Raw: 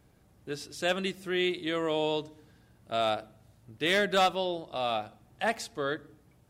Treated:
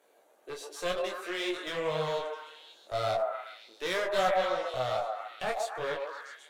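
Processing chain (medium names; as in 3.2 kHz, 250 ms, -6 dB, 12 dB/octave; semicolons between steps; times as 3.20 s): partial rectifier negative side -3 dB; high-pass 390 Hz 24 dB/octave; peaking EQ 540 Hz +6 dB 0.76 oct; band-stop 5.1 kHz, Q 6.2; in parallel at 0 dB: compression, threshold -38 dBFS, peak gain reduction 17.5 dB; on the sum: one-sided clip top -32.5 dBFS; on a send: repeats whose band climbs or falls 132 ms, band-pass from 720 Hz, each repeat 0.7 oct, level 0 dB; on the sum: detune thickener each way 23 cents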